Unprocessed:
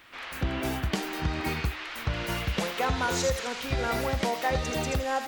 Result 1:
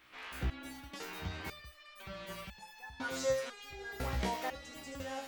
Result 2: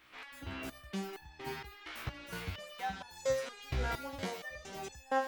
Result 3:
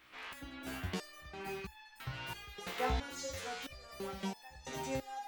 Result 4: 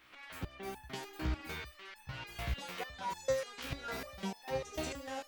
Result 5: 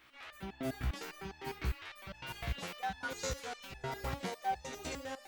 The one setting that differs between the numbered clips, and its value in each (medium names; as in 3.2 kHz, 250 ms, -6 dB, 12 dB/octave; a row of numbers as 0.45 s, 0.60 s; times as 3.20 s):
resonator arpeggio, rate: 2 Hz, 4.3 Hz, 3 Hz, 6.7 Hz, 9.9 Hz